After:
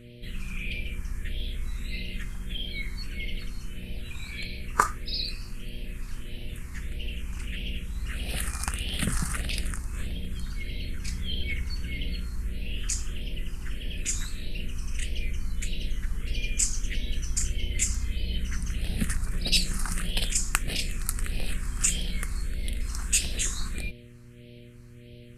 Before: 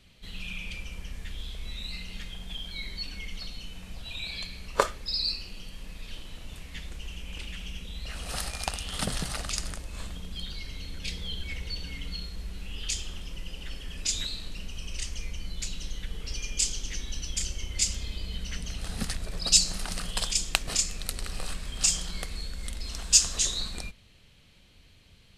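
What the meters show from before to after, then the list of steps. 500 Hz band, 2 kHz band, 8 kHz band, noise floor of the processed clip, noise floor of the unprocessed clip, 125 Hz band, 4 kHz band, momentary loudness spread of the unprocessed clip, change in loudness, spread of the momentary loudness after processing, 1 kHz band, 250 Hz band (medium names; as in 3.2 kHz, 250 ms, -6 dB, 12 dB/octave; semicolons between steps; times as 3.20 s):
-4.0 dB, +3.0 dB, -2.5 dB, -47 dBFS, -56 dBFS, +5.5 dB, -3.0 dB, 15 LU, -1.0 dB, 13 LU, +2.5 dB, +4.5 dB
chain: mains buzz 120 Hz, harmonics 5, -52 dBFS -2 dB/octave; phase shifter stages 4, 1.6 Hz, lowest notch 540–1200 Hz; trim +4.5 dB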